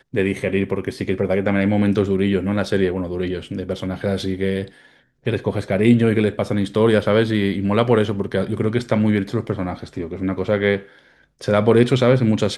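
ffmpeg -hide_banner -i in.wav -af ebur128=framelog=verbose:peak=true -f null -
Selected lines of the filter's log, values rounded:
Integrated loudness:
  I:         -19.9 LUFS
  Threshold: -30.1 LUFS
Loudness range:
  LRA:         4.3 LU
  Threshold: -40.4 LUFS
  LRA low:   -22.6 LUFS
  LRA high:  -18.3 LUFS
True peak:
  Peak:       -1.6 dBFS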